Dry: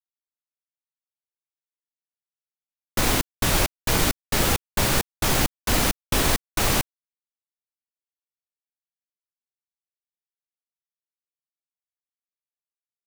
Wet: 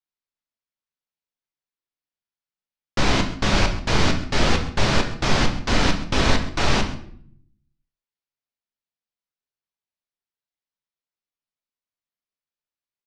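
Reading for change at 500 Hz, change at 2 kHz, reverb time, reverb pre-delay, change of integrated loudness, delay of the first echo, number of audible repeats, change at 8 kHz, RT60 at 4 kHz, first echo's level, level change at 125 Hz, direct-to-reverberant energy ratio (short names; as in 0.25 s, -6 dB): +3.0 dB, +2.5 dB, 0.65 s, 7 ms, +0.5 dB, 0.132 s, 1, -7.0 dB, 0.45 s, -16.5 dB, +3.5 dB, 3.5 dB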